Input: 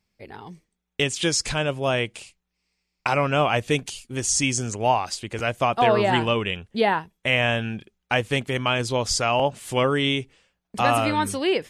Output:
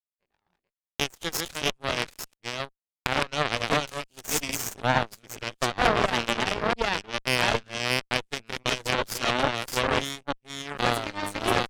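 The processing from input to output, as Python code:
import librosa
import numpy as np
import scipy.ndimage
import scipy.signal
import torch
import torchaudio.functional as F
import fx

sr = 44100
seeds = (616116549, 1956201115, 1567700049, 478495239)

y = fx.reverse_delay(x, sr, ms=449, wet_db=-1.0)
y = np.maximum(y, 0.0)
y = fx.cheby_harmonics(y, sr, harmonics=(7,), levels_db=(-17,), full_scale_db=-5.0)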